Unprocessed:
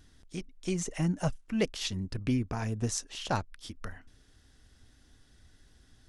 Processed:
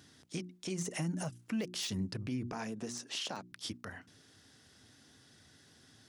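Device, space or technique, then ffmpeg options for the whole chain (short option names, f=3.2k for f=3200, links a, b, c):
broadcast voice chain: -filter_complex "[0:a]highpass=f=110:w=0.5412,highpass=f=110:w=1.3066,bandreject=f=60:t=h:w=6,bandreject=f=120:t=h:w=6,bandreject=f=180:t=h:w=6,bandreject=f=240:t=h:w=6,bandreject=f=300:t=h:w=6,bandreject=f=360:t=h:w=6,deesser=0.9,acompressor=threshold=-33dB:ratio=4,equalizer=f=5k:t=o:w=0.77:g=2.5,alimiter=level_in=7.5dB:limit=-24dB:level=0:latency=1:release=93,volume=-7.5dB,asettb=1/sr,asplit=3[a][b][c];[a]atrim=end=0.674[d];[b]atrim=start=0.67:end=1.98,asetpts=PTS-STARTPTS,afade=t=in:d=0.004:c=qsin,afade=t=out:st=1.306:d=0.004:c=qsin,adynamicequalizer=threshold=0.00112:dfrequency=7900:dqfactor=0.7:tfrequency=7900:tqfactor=0.7:attack=5:release=100:ratio=0.375:range=4:mode=boostabove:tftype=highshelf[e];[c]atrim=start=1.976[f];[d][e]acrossfade=d=0.004:c1=hsin:c2=qsin[g];[g][f]acrossfade=d=0.004:c1=qsin:c2=hsin,asettb=1/sr,asplit=3[h][i][j];[h]atrim=end=2.524[k];[i]atrim=start=2.52:end=3.52,asetpts=PTS-STARTPTS,afade=t=in:d=0.004:c=qsin,afade=t=out:st=0.996:d=0.004:c=qsin,highpass=f=160:w=0.5412,highpass=f=160:w=1.3066[l];[j]atrim=start=3.516[m];[k][l]acrossfade=d=0.004:c1=hsin:c2=qsin[n];[n][m]acrossfade=d=0.004:c1=qsin:c2=hsin,volume=3.5dB"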